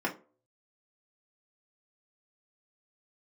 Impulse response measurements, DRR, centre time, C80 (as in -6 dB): -3.0 dB, 13 ms, 20.5 dB